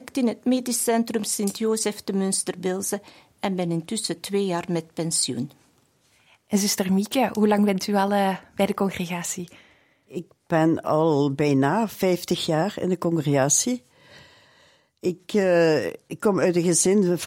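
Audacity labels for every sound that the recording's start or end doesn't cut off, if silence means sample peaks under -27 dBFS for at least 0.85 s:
6.530000	13.760000	sound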